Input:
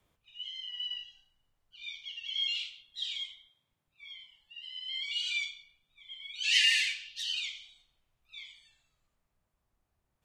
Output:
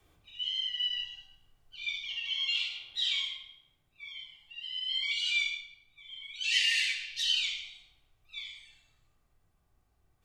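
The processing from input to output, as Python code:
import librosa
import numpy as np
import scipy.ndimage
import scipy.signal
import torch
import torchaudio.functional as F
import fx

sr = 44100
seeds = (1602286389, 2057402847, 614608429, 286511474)

y = fx.peak_eq(x, sr, hz=730.0, db=13.0, octaves=2.4, at=(2.1, 3.27))
y = fx.rider(y, sr, range_db=5, speed_s=0.5)
y = fx.room_shoebox(y, sr, seeds[0], volume_m3=3800.0, walls='furnished', distance_m=3.6)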